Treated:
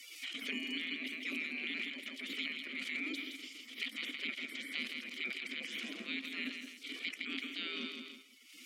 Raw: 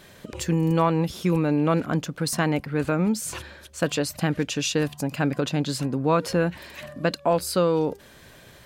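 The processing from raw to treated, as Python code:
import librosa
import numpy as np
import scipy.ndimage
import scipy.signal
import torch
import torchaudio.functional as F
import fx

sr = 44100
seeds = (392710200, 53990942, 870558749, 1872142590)

y = fx.high_shelf(x, sr, hz=3600.0, db=4.0)
y = fx.level_steps(y, sr, step_db=11)
y = fx.spec_gate(y, sr, threshold_db=-25, keep='weak')
y = scipy.signal.sosfilt(scipy.signal.butter(12, 200.0, 'highpass', fs=sr, output='sos'), y)
y = fx.peak_eq(y, sr, hz=1600.0, db=-8.5, octaves=0.2)
y = fx.echo_feedback(y, sr, ms=163, feedback_pct=21, wet_db=-11.0)
y = fx.transient(y, sr, attack_db=-8, sustain_db=10)
y = fx.vowel_filter(y, sr, vowel='i')
y = fx.band_squash(y, sr, depth_pct=100)
y = F.gain(torch.from_numpy(y), 18.0).numpy()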